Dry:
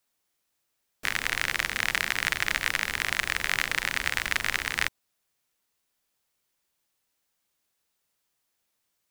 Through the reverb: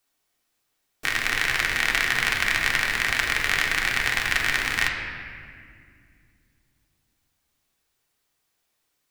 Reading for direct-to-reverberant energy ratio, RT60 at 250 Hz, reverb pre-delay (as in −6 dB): 0.5 dB, 3.5 s, 3 ms